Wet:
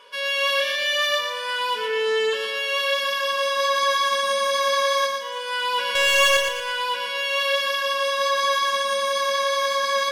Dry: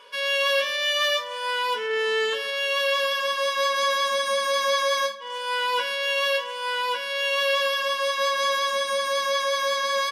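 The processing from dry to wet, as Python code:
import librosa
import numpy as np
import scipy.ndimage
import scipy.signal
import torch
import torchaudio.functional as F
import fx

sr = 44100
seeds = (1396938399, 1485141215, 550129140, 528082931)

p1 = fx.leveller(x, sr, passes=3, at=(5.95, 6.37))
y = p1 + fx.echo_feedback(p1, sr, ms=116, feedback_pct=46, wet_db=-5, dry=0)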